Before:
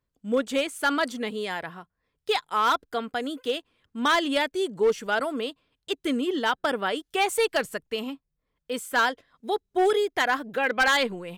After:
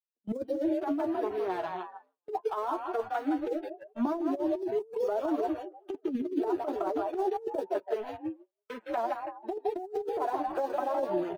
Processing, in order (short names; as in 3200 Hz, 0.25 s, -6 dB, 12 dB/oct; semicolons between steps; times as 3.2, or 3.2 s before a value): median filter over 25 samples; treble ducked by the level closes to 520 Hz, closed at -23.5 dBFS; HPF 270 Hz 24 dB/oct; frequency-shifting echo 0.162 s, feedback 36%, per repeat +44 Hz, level -6 dB; in parallel at -9 dB: bit-crush 6-bit; on the sum: spectral noise reduction 18 dB; flange 0.22 Hz, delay 8.5 ms, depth 3.2 ms, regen +12%; gate with hold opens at -52 dBFS; negative-ratio compressor -33 dBFS, ratio -0.5; tilt shelf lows +6.5 dB; three-band squash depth 40%